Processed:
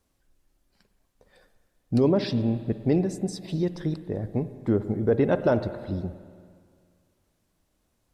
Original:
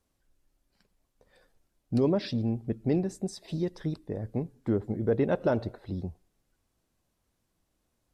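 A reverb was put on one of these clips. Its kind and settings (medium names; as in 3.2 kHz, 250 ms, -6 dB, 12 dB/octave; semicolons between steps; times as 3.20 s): spring tank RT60 2.1 s, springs 51/56 ms, chirp 45 ms, DRR 12 dB; trim +4 dB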